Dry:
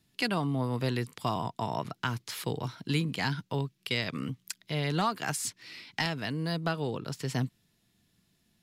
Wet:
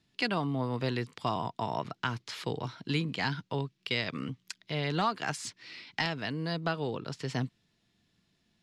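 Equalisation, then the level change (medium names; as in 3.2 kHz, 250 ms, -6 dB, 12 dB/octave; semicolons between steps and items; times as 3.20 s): low-pass 5.3 kHz 12 dB/octave; tone controls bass -3 dB, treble +1 dB; 0.0 dB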